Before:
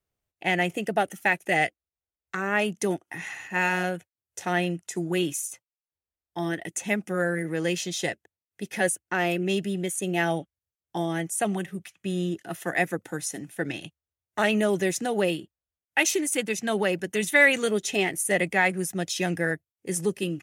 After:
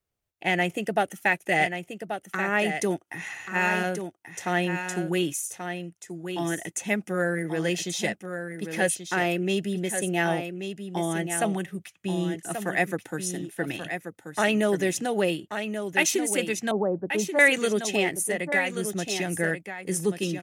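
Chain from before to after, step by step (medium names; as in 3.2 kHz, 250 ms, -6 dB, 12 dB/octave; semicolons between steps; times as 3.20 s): 16.71–17.39 s: steep low-pass 1.1 kHz 36 dB/octave; 18.22–19.36 s: compression 6:1, threshold -25 dBFS, peak gain reduction 8.5 dB; delay 1133 ms -8 dB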